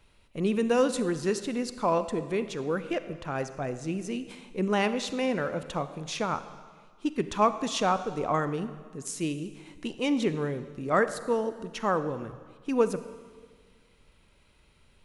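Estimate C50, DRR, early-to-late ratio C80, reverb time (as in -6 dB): 12.5 dB, 11.5 dB, 13.5 dB, 1.6 s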